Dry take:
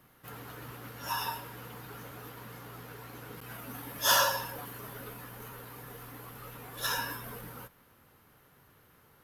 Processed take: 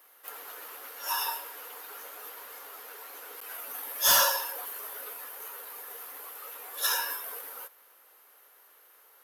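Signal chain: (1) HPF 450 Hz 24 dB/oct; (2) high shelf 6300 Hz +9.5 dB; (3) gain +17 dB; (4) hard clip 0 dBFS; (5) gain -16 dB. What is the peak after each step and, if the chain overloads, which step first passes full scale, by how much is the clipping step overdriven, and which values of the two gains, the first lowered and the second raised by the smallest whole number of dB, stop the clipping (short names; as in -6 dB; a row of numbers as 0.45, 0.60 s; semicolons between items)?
-11.0, -7.5, +9.5, 0.0, -16.0 dBFS; step 3, 9.5 dB; step 3 +7 dB, step 5 -6 dB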